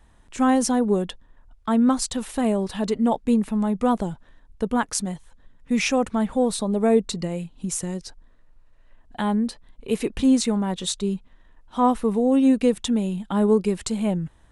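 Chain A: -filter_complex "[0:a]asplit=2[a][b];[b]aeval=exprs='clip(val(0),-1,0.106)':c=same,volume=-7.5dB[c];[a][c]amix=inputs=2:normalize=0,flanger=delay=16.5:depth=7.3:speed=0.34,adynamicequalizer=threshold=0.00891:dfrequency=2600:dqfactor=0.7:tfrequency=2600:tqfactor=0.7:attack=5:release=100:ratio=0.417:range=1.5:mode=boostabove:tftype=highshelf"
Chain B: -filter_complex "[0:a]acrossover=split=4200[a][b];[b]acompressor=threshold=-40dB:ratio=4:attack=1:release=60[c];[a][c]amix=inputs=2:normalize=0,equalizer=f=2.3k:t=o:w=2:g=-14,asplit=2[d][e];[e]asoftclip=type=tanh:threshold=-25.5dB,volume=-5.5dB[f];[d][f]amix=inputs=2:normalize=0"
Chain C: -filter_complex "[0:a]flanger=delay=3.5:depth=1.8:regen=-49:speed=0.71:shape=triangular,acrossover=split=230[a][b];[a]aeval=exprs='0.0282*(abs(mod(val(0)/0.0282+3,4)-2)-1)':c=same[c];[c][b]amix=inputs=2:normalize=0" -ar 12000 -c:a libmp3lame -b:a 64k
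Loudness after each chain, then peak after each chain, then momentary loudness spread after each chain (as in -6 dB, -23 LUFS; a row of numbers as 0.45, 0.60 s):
-22.5, -22.5, -28.5 LUFS; -5.0, -8.5, -13.0 dBFS; 12, 11, 12 LU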